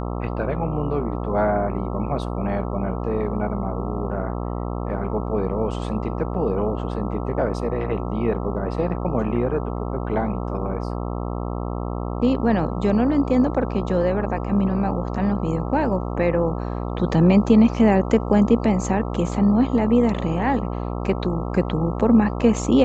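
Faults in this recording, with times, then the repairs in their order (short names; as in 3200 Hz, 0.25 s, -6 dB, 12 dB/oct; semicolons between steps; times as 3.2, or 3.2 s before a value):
buzz 60 Hz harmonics 22 -27 dBFS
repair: de-hum 60 Hz, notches 22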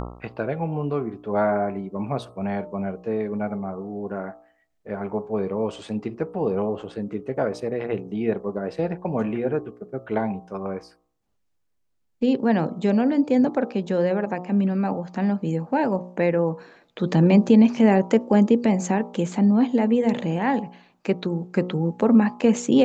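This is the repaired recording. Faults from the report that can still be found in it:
none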